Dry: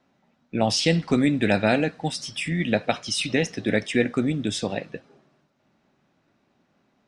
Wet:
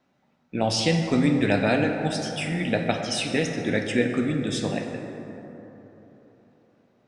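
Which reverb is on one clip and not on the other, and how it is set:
dense smooth reverb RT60 3.8 s, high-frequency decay 0.35×, DRR 3 dB
level −2.5 dB

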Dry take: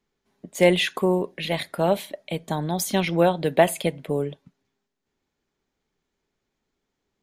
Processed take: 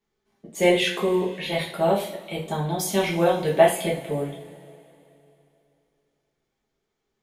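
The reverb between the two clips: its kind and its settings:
coupled-rooms reverb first 0.4 s, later 3 s, from −21 dB, DRR −5 dB
level −6 dB

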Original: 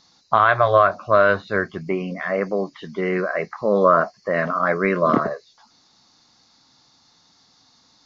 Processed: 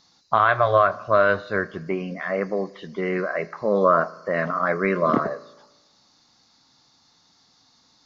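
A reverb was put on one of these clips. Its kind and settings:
spring reverb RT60 1.1 s, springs 36 ms, chirp 20 ms, DRR 18.5 dB
level −2.5 dB

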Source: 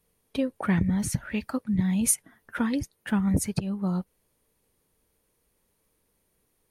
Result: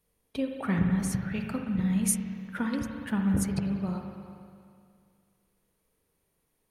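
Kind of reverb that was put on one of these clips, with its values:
spring reverb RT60 2.3 s, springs 41/59 ms, chirp 55 ms, DRR 2.5 dB
level −4.5 dB

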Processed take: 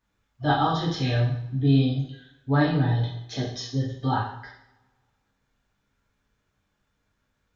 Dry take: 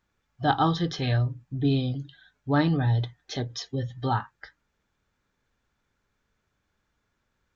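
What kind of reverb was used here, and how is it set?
coupled-rooms reverb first 0.64 s, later 1.9 s, from −27 dB, DRR −5 dB
level −5 dB

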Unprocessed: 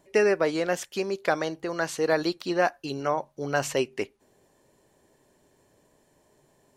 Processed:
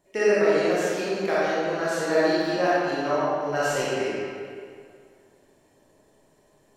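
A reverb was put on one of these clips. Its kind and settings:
comb and all-pass reverb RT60 2.2 s, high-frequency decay 0.75×, pre-delay 0 ms, DRR −9.5 dB
level −7 dB

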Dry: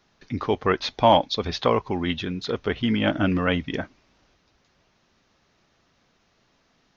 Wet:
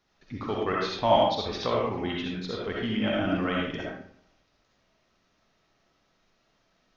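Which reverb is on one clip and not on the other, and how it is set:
comb and all-pass reverb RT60 0.63 s, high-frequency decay 0.65×, pre-delay 25 ms, DRR −3.5 dB
level −9 dB

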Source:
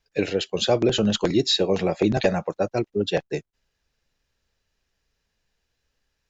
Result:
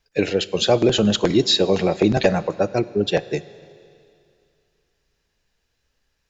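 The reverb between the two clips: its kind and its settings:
four-comb reverb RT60 2.5 s, combs from 32 ms, DRR 17.5 dB
level +3.5 dB

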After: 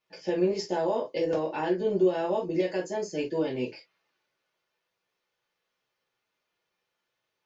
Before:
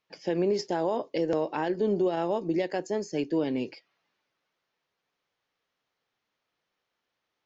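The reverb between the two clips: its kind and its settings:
reverb whose tail is shaped and stops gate 80 ms falling, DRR −5 dB
level −5.5 dB

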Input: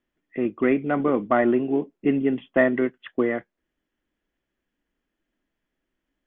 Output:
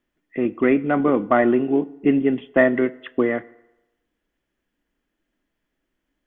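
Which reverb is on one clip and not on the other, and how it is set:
feedback delay network reverb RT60 0.98 s, low-frequency decay 0.75×, high-frequency decay 0.75×, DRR 17.5 dB
level +3 dB

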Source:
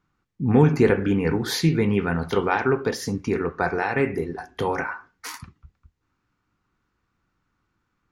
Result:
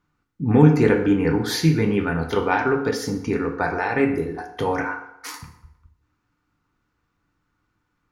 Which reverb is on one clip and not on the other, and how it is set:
feedback delay network reverb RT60 0.84 s, low-frequency decay 0.8×, high-frequency decay 0.7×, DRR 5 dB

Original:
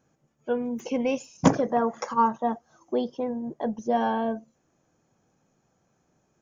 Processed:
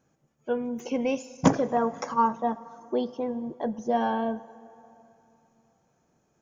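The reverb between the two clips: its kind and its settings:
dense smooth reverb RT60 3.1 s, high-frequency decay 0.6×, DRR 17 dB
level −1 dB

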